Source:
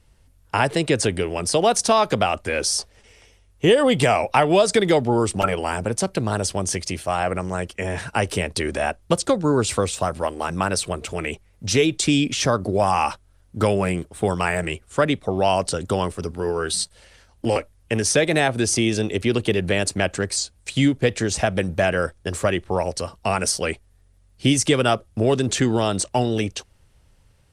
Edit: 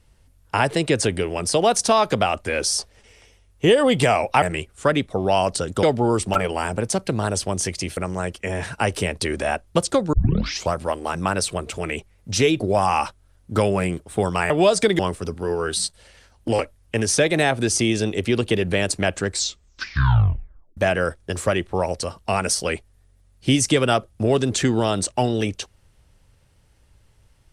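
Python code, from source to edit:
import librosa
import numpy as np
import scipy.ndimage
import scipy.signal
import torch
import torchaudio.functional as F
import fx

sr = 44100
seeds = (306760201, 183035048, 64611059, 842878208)

y = fx.edit(x, sr, fx.swap(start_s=4.42, length_s=0.49, other_s=14.55, other_length_s=1.41),
    fx.cut(start_s=7.05, length_s=0.27),
    fx.tape_start(start_s=9.48, length_s=0.61),
    fx.cut(start_s=11.95, length_s=0.7),
    fx.tape_stop(start_s=20.23, length_s=1.51), tone=tone)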